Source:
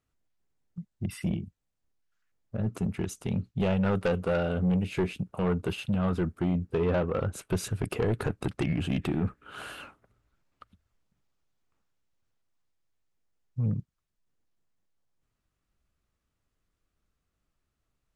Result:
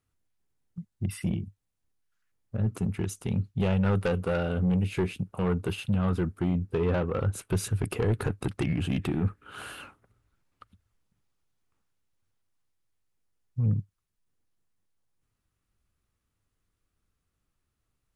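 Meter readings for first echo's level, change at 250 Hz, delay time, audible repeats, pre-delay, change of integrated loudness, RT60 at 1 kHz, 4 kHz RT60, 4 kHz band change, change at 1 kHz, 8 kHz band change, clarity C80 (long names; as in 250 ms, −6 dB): no echo audible, 0.0 dB, no echo audible, no echo audible, no reverb audible, +1.0 dB, no reverb audible, no reverb audible, 0.0 dB, −0.5 dB, +2.5 dB, no reverb audible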